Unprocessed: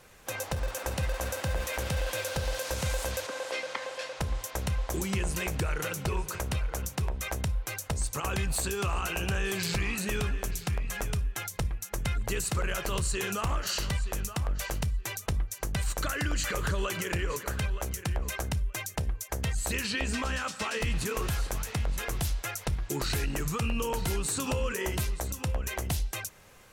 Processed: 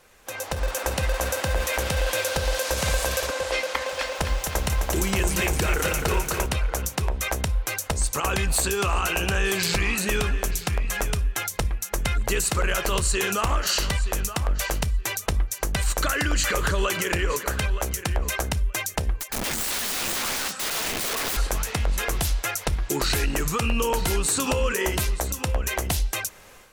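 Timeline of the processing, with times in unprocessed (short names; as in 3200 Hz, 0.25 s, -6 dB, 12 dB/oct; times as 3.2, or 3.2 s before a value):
2.25–2.78 echo throw 0.52 s, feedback 40%, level -6 dB
3.6–6.46 lo-fi delay 0.259 s, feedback 55%, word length 9-bit, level -5.5 dB
19.17–21.37 wrapped overs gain 30.5 dB
whole clip: bell 120 Hz -7.5 dB 1.4 oct; AGC gain up to 8 dB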